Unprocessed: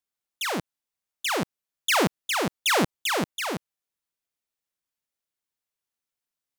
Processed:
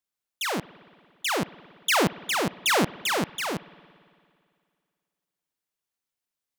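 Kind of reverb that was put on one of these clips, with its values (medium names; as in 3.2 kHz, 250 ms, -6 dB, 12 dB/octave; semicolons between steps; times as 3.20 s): spring tank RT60 2.2 s, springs 56 ms, chirp 55 ms, DRR 18.5 dB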